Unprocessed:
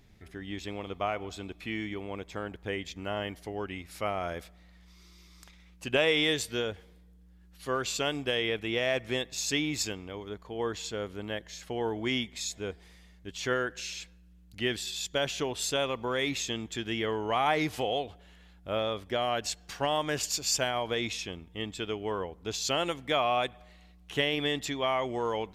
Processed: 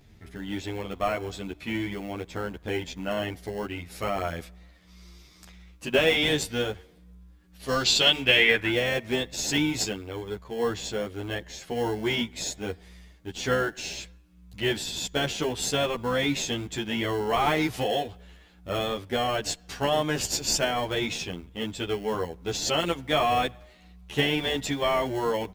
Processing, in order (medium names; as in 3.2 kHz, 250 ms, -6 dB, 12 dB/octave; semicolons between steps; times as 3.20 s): in parallel at -10.5 dB: sample-rate reducer 1.2 kHz, jitter 0%; 7.67–8.70 s: on the sum: peaking EQ 5.6 kHz -> 1.5 kHz +14 dB 0.94 oct; endless flanger 11 ms +1.9 Hz; trim +6 dB